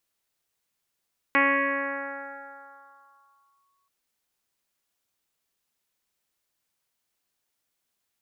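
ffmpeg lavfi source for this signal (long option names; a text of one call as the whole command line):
ffmpeg -f lavfi -i "aevalsrc='0.178*pow(10,-3*t/2.64)*sin(2*PI*1110*t+4.3*clip(1-t/2.35,0,1)*sin(2*PI*0.25*1110*t))':duration=2.53:sample_rate=44100" out.wav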